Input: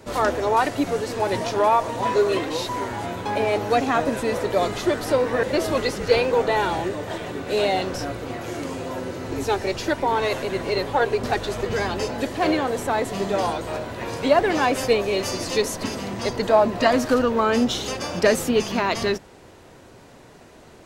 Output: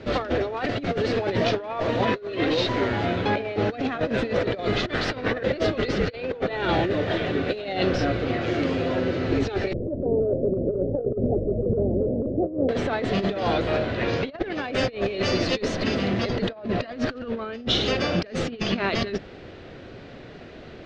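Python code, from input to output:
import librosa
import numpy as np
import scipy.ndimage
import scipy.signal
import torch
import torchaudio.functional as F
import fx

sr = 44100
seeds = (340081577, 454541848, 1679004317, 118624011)

y = fx.spec_clip(x, sr, under_db=13, at=(4.88, 5.3), fade=0.02)
y = fx.ellip_lowpass(y, sr, hz=580.0, order=4, stop_db=60, at=(9.73, 12.69))
y = fx.resample_bad(y, sr, factor=3, down='none', up='filtered', at=(14.05, 14.48))
y = scipy.signal.sosfilt(scipy.signal.butter(4, 4200.0, 'lowpass', fs=sr, output='sos'), y)
y = fx.peak_eq(y, sr, hz=950.0, db=-11.0, octaves=0.49)
y = fx.over_compress(y, sr, threshold_db=-27.0, ratio=-0.5)
y = y * librosa.db_to_amplitude(3.0)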